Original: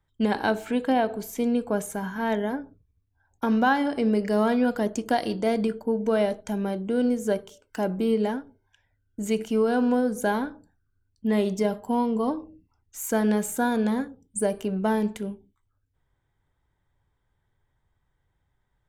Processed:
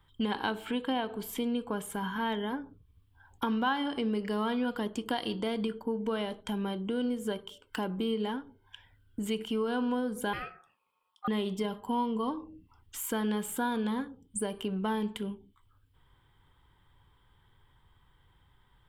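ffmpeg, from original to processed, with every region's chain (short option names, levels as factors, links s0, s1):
-filter_complex "[0:a]asettb=1/sr,asplit=3[s0][s1][s2];[s0]atrim=end=10.334[s3];[s1]atrim=start=10.33:end=11.28,asetpts=PTS-STARTPTS,afade=t=in:d=0.004:c=qsin,afade=t=out:st=0.946:d=0.004:c=qsin,highpass=f=490:p=1,aeval=exprs='val(0)*sin(2*PI*1000*n/s)':c=same[s4];[s2]atrim=start=11.276[s5];[s3][s4]acrossfade=d=0.004:c1=hsin:c2=qsin[s6];[s6][s5]acrossfade=d=0.004:c1=qsin:c2=hsin,equalizer=f=1200:w=2.9:g=3.5,acompressor=threshold=0.00316:ratio=2,equalizer=f=630:t=o:w=0.33:g=-8,equalizer=f=1000:t=o:w=0.33:g=5,equalizer=f=3150:t=o:w=0.33:g=12,equalizer=f=6300:t=o:w=0.33:g=-11,volume=2.51"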